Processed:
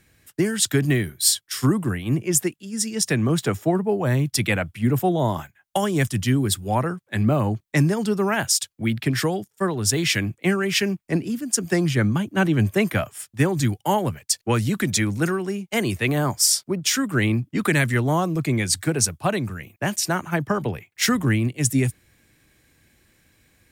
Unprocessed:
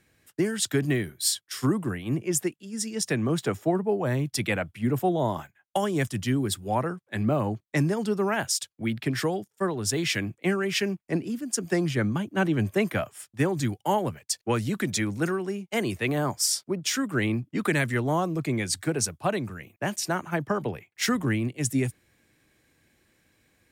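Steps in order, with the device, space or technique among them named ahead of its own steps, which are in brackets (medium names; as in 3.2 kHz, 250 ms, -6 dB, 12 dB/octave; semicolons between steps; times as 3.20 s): smiley-face EQ (bass shelf 87 Hz +6.5 dB; peaking EQ 500 Hz -3 dB 2.4 oct; treble shelf 9.7 kHz +4 dB); trim +5.5 dB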